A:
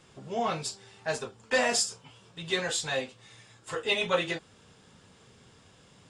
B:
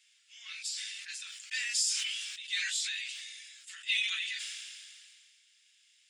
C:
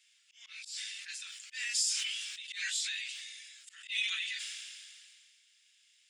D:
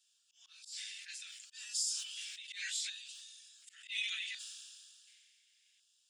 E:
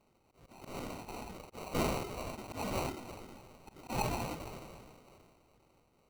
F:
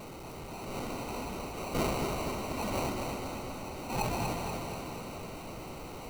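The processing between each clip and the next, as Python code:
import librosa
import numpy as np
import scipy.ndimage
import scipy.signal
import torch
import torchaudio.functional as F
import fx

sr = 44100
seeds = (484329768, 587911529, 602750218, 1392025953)

y1 = scipy.signal.sosfilt(scipy.signal.butter(6, 2000.0, 'highpass', fs=sr, output='sos'), x)
y1 = fx.sustainer(y1, sr, db_per_s=27.0)
y1 = y1 * librosa.db_to_amplitude(-3.0)
y2 = fx.auto_swell(y1, sr, attack_ms=121.0)
y2 = y2 * librosa.db_to_amplitude(-1.0)
y3 = fx.filter_lfo_notch(y2, sr, shape='square', hz=0.69, low_hz=820.0, high_hz=2100.0, q=0.7)
y3 = y3 * librosa.db_to_amplitude(-3.5)
y4 = fx.sample_hold(y3, sr, seeds[0], rate_hz=1700.0, jitter_pct=0)
y4 = y4 * librosa.db_to_amplitude(4.0)
y5 = y4 + 0.5 * 10.0 ** (-39.0 / 20.0) * np.sign(y4)
y5 = fx.echo_feedback(y5, sr, ms=241, feedback_pct=59, wet_db=-5.0)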